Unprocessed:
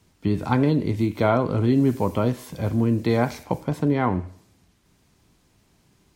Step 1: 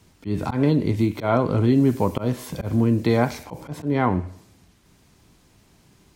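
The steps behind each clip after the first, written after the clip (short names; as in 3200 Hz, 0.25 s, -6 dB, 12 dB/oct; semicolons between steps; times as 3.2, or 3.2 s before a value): auto swell 0.142 s; in parallel at -2 dB: compressor, threshold -29 dBFS, peak gain reduction 13.5 dB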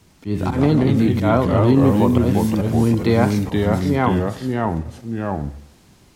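echoes that change speed 0.101 s, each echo -2 st, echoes 2; gain +2.5 dB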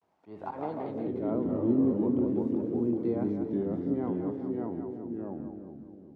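split-band echo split 510 Hz, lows 0.346 s, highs 0.195 s, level -6.5 dB; band-pass sweep 740 Hz -> 320 Hz, 0.81–1.44; vibrato 0.47 Hz 72 cents; gain -7.5 dB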